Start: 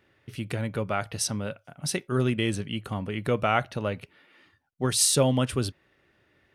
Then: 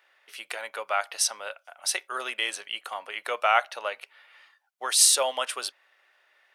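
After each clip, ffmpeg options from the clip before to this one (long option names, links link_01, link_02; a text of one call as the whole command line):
ffmpeg -i in.wav -af "highpass=frequency=670:width=0.5412,highpass=frequency=670:width=1.3066,volume=4dB" out.wav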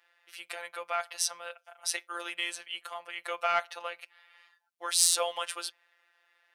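ffmpeg -i in.wav -af "acontrast=83,afftfilt=real='hypot(re,im)*cos(PI*b)':imag='0':win_size=1024:overlap=0.75,lowshelf=frequency=250:gain=-5.5,volume=-8dB" out.wav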